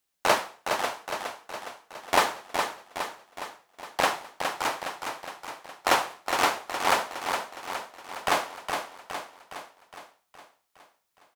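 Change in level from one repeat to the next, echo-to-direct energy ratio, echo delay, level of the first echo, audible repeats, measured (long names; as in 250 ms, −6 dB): −5.0 dB, −4.5 dB, 414 ms, −6.0 dB, 6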